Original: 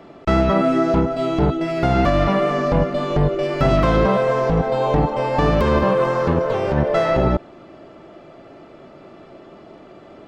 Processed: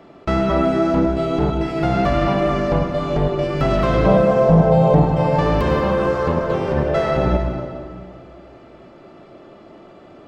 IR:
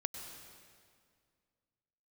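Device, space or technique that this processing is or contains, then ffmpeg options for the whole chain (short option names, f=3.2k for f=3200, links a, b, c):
stairwell: -filter_complex "[0:a]asettb=1/sr,asplit=3[a][b][c];[a]atrim=end=4.064[d];[b]atrim=start=4.06:end=5.04,asetpts=PTS-STARTPTS,afade=t=in:d=0.004:c=qsin,afade=t=out:st=0.976:d=0.004:c=qsin,equalizer=f=160:t=o:w=0.67:g=10,equalizer=f=630:t=o:w=0.67:g=8,equalizer=f=1.6k:t=o:w=0.67:g=-4,equalizer=f=4k:t=o:w=0.67:g=-4[e];[c]atrim=start=5.036[f];[d][e]acrossfade=d=0.004:c1=hsin:c2=qsin[g];[g][f]acrossfade=d=0.004:c1=qsin:c2=hsin[h];[1:a]atrim=start_sample=2205[i];[h][i]afir=irnorm=-1:irlink=0,volume=-1dB"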